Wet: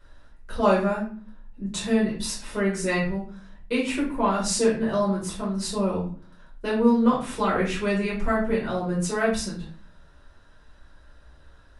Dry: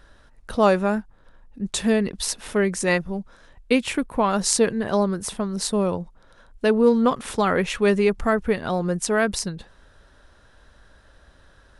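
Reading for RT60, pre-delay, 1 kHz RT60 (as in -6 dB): 0.45 s, 5 ms, 0.40 s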